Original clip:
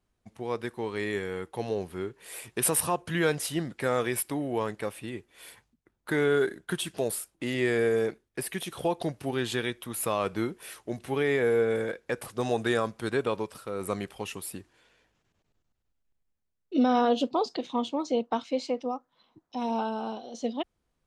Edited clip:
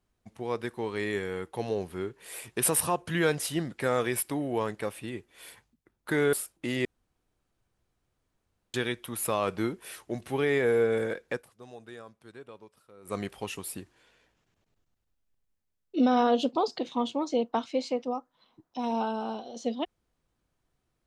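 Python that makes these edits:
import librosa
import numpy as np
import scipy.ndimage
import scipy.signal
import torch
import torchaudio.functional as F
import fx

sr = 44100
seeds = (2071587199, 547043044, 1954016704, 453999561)

y = fx.edit(x, sr, fx.cut(start_s=6.33, length_s=0.78),
    fx.room_tone_fill(start_s=7.63, length_s=1.89),
    fx.fade_down_up(start_s=12.09, length_s=1.87, db=-19.0, fade_s=0.14), tone=tone)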